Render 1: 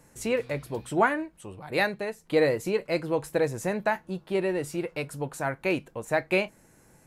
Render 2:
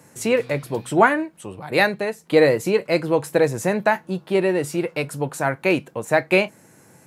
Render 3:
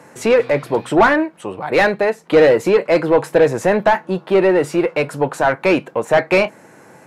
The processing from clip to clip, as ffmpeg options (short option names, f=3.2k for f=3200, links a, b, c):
-af "highpass=f=100:w=0.5412,highpass=f=100:w=1.3066,volume=7.5dB"
-filter_complex "[0:a]asplit=2[a][b];[b]highpass=f=720:p=1,volume=21dB,asoftclip=type=tanh:threshold=-1dB[c];[a][c]amix=inputs=2:normalize=0,lowpass=f=1.1k:p=1,volume=-6dB"